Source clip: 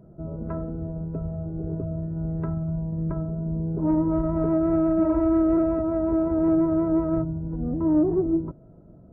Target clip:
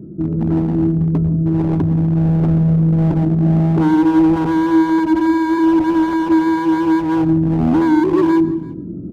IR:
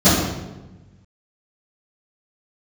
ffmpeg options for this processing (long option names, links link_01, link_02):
-filter_complex "[0:a]highpass=frequency=130:poles=1,lowshelf=frequency=470:width_type=q:width=3:gain=13.5,areverse,acompressor=mode=upward:threshold=-21dB:ratio=2.5,areverse,alimiter=limit=-3dB:level=0:latency=1:release=383,asoftclip=type=hard:threshold=-12.5dB,aecho=1:1:336:0.075,asplit=2[link_01][link_02];[1:a]atrim=start_sample=2205,atrim=end_sample=4410,adelay=104[link_03];[link_02][link_03]afir=irnorm=-1:irlink=0,volume=-40dB[link_04];[link_01][link_04]amix=inputs=2:normalize=0"